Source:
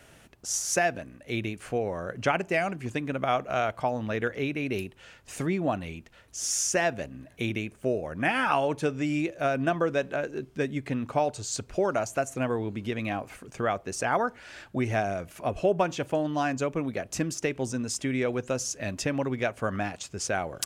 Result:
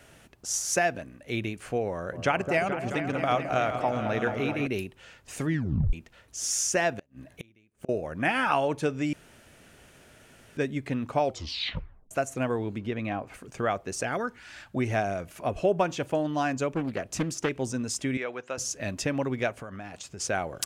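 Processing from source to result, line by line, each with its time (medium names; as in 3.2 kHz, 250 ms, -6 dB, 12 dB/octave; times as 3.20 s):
1.91–4.67 s: delay with an opening low-pass 215 ms, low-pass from 750 Hz, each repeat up 2 oct, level -6 dB
5.46 s: tape stop 0.47 s
6.93–7.89 s: inverted gate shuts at -26 dBFS, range -31 dB
9.13–10.57 s: room tone
11.21 s: tape stop 0.90 s
12.78–13.34 s: low-pass 2.3 kHz 6 dB/octave
14.03–14.72 s: peaking EQ 1.1 kHz -> 350 Hz -12 dB
16.73–17.49 s: loudspeaker Doppler distortion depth 0.51 ms
18.17–18.58 s: band-pass filter 1.6 kHz, Q 0.62
19.59–20.20 s: compression 8:1, threshold -36 dBFS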